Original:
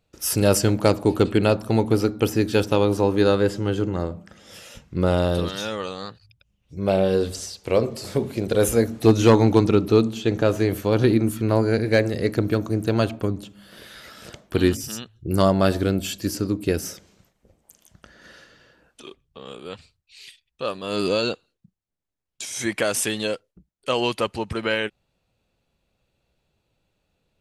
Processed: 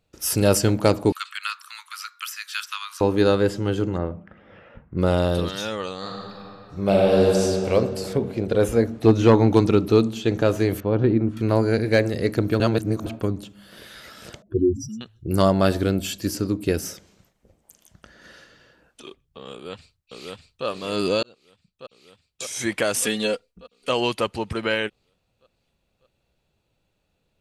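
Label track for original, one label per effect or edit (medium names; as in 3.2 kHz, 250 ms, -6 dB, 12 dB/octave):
1.120000	3.010000	steep high-pass 1.1 kHz 72 dB/octave
3.970000	4.970000	low-pass 3 kHz -> 1.6 kHz 24 dB/octave
5.980000	7.430000	reverb throw, RT60 2.9 s, DRR -3 dB
8.130000	9.530000	low-pass 2.5 kHz 6 dB/octave
10.800000	11.370000	tape spacing loss at 10 kHz 39 dB
12.600000	13.060000	reverse
14.420000	15.010000	spectral contrast enhancement exponent 3.2
19.510000	20.660000	echo throw 600 ms, feedback 60%, level -1.5 dB
21.230000	22.430000	fade in
23.020000	23.900000	comb 4.2 ms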